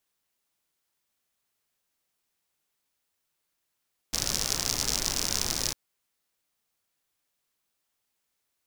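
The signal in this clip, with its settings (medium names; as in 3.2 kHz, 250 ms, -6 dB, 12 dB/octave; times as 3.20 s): rain from filtered ticks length 1.60 s, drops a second 76, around 5.5 kHz, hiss -4.5 dB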